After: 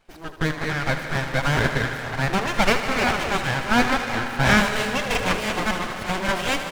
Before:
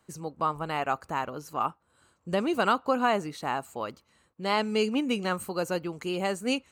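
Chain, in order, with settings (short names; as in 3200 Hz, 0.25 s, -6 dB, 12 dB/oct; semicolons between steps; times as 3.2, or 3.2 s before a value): reverse delay 0.571 s, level 0 dB; LPF 4900 Hz 12 dB/oct; low shelf 240 Hz -11 dB; notch 600 Hz, Q 12; in parallel at -1.5 dB: compressor, threshold -32 dBFS, peak gain reduction 12.5 dB; on the sum: comb 1.3 ms, depth 92%; full-wave rectifier; random-step tremolo; thinning echo 77 ms, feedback 77%, high-pass 200 Hz, level -11 dB; on a send at -8.5 dB: reverb RT60 5.4 s, pre-delay 0.115 s; on the sum: running maximum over 5 samples; gain +8 dB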